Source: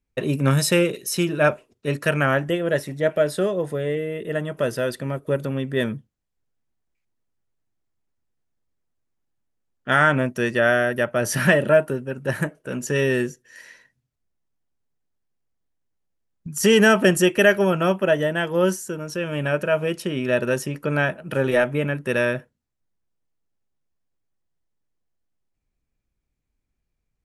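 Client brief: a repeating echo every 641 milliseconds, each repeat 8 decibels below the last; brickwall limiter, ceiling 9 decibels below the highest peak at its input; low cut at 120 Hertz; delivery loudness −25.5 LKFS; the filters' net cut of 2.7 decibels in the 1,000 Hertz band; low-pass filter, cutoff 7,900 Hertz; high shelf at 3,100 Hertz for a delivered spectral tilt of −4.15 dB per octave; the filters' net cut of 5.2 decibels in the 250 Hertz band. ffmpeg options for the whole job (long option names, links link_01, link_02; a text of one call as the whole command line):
ffmpeg -i in.wav -af "highpass=120,lowpass=7900,equalizer=frequency=250:width_type=o:gain=-7,equalizer=frequency=1000:width_type=o:gain=-4.5,highshelf=frequency=3100:gain=3.5,alimiter=limit=-13.5dB:level=0:latency=1,aecho=1:1:641|1282|1923|2564|3205:0.398|0.159|0.0637|0.0255|0.0102" out.wav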